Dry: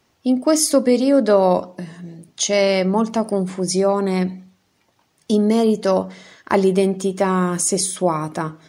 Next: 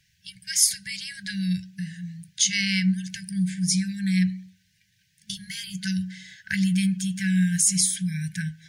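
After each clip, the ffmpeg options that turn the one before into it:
ffmpeg -i in.wav -af "afftfilt=real='re*(1-between(b*sr/4096,200,1500))':imag='im*(1-between(b*sr/4096,200,1500))':win_size=4096:overlap=0.75" out.wav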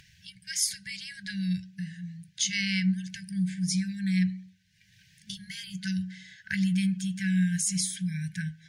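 ffmpeg -i in.wav -af "acompressor=mode=upward:threshold=-42dB:ratio=2.5,highshelf=frequency=7300:gain=-9,volume=-3.5dB" out.wav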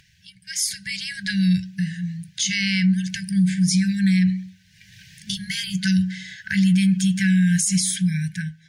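ffmpeg -i in.wav -af "dynaudnorm=framelen=220:gausssize=7:maxgain=13dB,alimiter=limit=-12dB:level=0:latency=1:release=45" out.wav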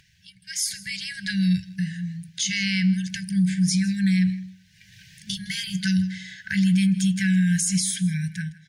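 ffmpeg -i in.wav -af "aecho=1:1:160:0.112,volume=-2.5dB" out.wav

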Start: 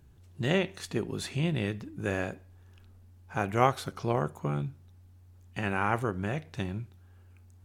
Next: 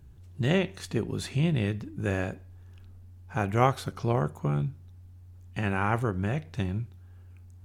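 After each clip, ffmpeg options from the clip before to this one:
ffmpeg -i in.wav -af "lowshelf=frequency=160:gain=8" out.wav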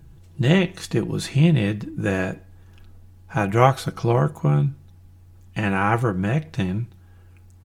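ffmpeg -i in.wav -af "aecho=1:1:6.1:0.54,volume=6dB" out.wav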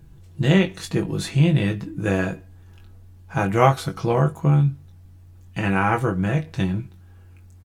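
ffmpeg -i in.wav -filter_complex "[0:a]asplit=2[link_01][link_02];[link_02]adelay=21,volume=-6dB[link_03];[link_01][link_03]amix=inputs=2:normalize=0,volume=-1dB" out.wav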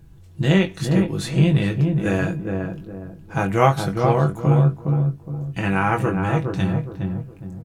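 ffmpeg -i in.wav -filter_complex "[0:a]asplit=2[link_01][link_02];[link_02]adelay=414,lowpass=frequency=890:poles=1,volume=-3dB,asplit=2[link_03][link_04];[link_04]adelay=414,lowpass=frequency=890:poles=1,volume=0.37,asplit=2[link_05][link_06];[link_06]adelay=414,lowpass=frequency=890:poles=1,volume=0.37,asplit=2[link_07][link_08];[link_08]adelay=414,lowpass=frequency=890:poles=1,volume=0.37,asplit=2[link_09][link_10];[link_10]adelay=414,lowpass=frequency=890:poles=1,volume=0.37[link_11];[link_01][link_03][link_05][link_07][link_09][link_11]amix=inputs=6:normalize=0" out.wav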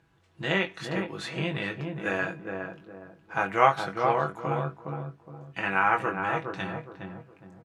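ffmpeg -i in.wav -af "bandpass=frequency=1500:width_type=q:width=0.75:csg=0" out.wav

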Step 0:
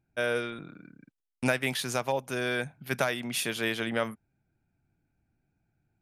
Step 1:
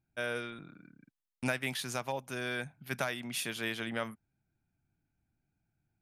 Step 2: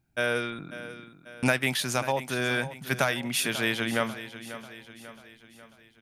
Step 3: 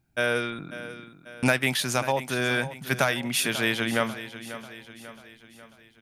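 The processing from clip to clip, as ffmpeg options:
ffmpeg -i in.wav -af "equalizer=frequency=470:width=1.5:gain=-4,volume=-5dB" out.wav
ffmpeg -i in.wav -af "aecho=1:1:542|1084|1626|2168|2710:0.211|0.108|0.055|0.028|0.0143,volume=8.5dB" out.wav
ffmpeg -i in.wav -af "asoftclip=type=hard:threshold=-10.5dB,volume=2dB" out.wav

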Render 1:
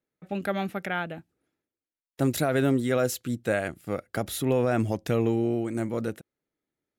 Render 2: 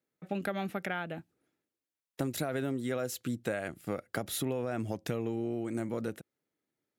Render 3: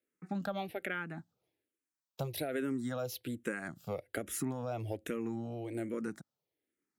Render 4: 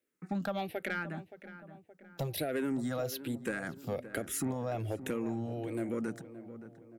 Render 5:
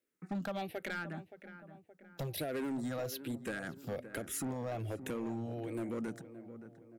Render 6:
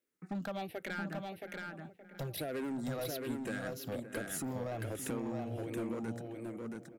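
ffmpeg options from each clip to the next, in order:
ffmpeg -i in.wav -af "highpass=93,acompressor=threshold=-30dB:ratio=6" out.wav
ffmpeg -i in.wav -filter_complex "[0:a]asplit=2[link_01][link_02];[link_02]afreqshift=-1.2[link_03];[link_01][link_03]amix=inputs=2:normalize=1" out.wav
ffmpeg -i in.wav -filter_complex "[0:a]aeval=exprs='0.0841*(cos(1*acos(clip(val(0)/0.0841,-1,1)))-cos(1*PI/2))+0.0075*(cos(5*acos(clip(val(0)/0.0841,-1,1)))-cos(5*PI/2))':channel_layout=same,asplit=2[link_01][link_02];[link_02]adelay=572,lowpass=frequency=1600:poles=1,volume=-13dB,asplit=2[link_03][link_04];[link_04]adelay=572,lowpass=frequency=1600:poles=1,volume=0.52,asplit=2[link_05][link_06];[link_06]adelay=572,lowpass=frequency=1600:poles=1,volume=0.52,asplit=2[link_07][link_08];[link_08]adelay=572,lowpass=frequency=1600:poles=1,volume=0.52,asplit=2[link_09][link_10];[link_10]adelay=572,lowpass=frequency=1600:poles=1,volume=0.52[link_11];[link_01][link_03][link_05][link_07][link_09][link_11]amix=inputs=6:normalize=0" out.wav
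ffmpeg -i in.wav -af "volume=30.5dB,asoftclip=hard,volume=-30.5dB,volume=-2.5dB" out.wav
ffmpeg -i in.wav -af "aecho=1:1:674:0.668,volume=-1dB" out.wav

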